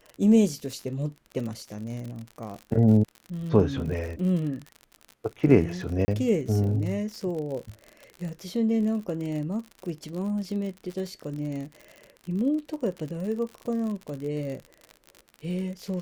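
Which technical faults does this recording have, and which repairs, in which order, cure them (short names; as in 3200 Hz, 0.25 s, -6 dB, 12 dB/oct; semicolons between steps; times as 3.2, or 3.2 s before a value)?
crackle 53/s -33 dBFS
6.05–6.08 gap 30 ms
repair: de-click; interpolate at 6.05, 30 ms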